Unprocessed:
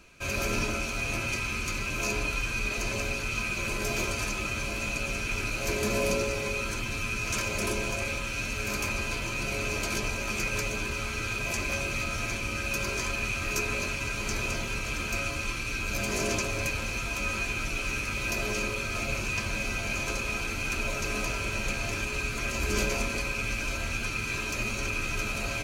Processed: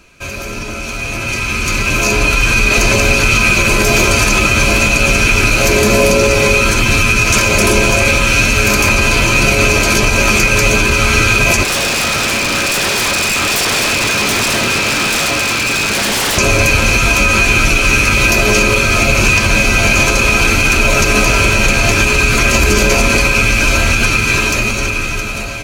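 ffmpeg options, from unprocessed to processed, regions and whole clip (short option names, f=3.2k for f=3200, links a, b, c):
-filter_complex "[0:a]asettb=1/sr,asplit=3[a][b][c];[a]atrim=end=11.634[d];[b]atrim=start=11.63:end=16.38,asetpts=PTS-STARTPTS,afade=t=in:d=0.004:c=qsin,afade=t=out:st=4.746:d=0.004:c=qsin,highpass=140,lowpass=5.7k,aeval=exprs='0.0224*(abs(mod(val(0)/0.0224+3,4)-2)-1)':c=same[e];[c]atrim=start=16.376[f];[d][e]acrossfade=d=0.004:c1=hsin:c2=qsin[g];[g][f]acrossfade=d=0.004:c1=qsin:c2=hsin,acontrast=80,alimiter=limit=-17dB:level=0:latency=1:release=91,dynaudnorm=f=490:g=7:m=15dB,volume=2dB"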